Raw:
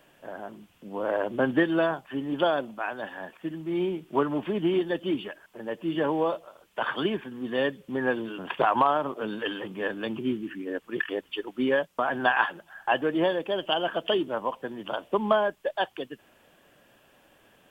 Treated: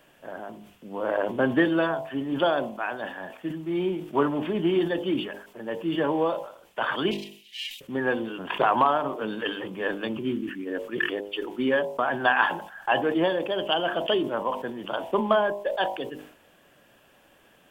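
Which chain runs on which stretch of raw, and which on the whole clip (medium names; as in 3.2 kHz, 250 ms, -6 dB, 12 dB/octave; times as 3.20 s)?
7.11–7.81 s: comb filter that takes the minimum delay 1 ms + elliptic high-pass 2.5 kHz, stop band 50 dB + comb 4.6 ms, depth 73%
whole clip: de-hum 50.69 Hz, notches 21; decay stretcher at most 97 dB/s; trim +1.5 dB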